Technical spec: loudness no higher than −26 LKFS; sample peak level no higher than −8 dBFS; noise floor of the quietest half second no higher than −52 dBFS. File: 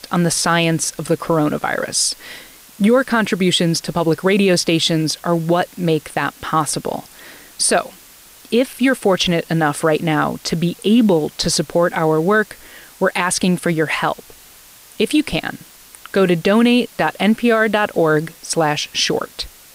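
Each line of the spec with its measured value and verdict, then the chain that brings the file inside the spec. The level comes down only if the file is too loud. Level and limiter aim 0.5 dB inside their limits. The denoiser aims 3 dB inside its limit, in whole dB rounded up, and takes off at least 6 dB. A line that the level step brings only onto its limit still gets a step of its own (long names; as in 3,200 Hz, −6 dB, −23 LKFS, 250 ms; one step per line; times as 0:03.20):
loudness −17.0 LKFS: out of spec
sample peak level −5.5 dBFS: out of spec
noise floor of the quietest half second −44 dBFS: out of spec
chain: level −9.5 dB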